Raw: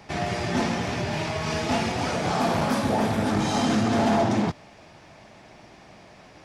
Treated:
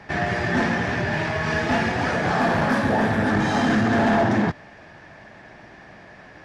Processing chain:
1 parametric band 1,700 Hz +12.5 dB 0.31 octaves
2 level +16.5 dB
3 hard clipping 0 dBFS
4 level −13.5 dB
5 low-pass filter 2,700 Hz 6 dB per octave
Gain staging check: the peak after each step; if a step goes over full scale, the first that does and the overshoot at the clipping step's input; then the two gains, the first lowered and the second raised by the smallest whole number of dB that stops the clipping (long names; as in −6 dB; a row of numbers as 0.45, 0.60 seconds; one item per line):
−11.0, +5.5, 0.0, −13.5, −13.5 dBFS
step 2, 5.5 dB
step 2 +10.5 dB, step 4 −7.5 dB